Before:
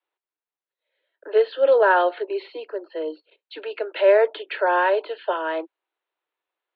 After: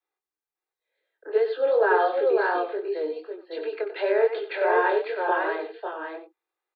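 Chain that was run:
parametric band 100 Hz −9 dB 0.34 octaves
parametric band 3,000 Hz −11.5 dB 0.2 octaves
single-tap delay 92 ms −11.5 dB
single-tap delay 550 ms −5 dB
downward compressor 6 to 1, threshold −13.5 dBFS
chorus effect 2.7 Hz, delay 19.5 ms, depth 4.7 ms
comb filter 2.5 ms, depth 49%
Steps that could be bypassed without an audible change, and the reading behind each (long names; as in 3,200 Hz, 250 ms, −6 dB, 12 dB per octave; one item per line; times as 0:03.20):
parametric band 100 Hz: nothing at its input below 300 Hz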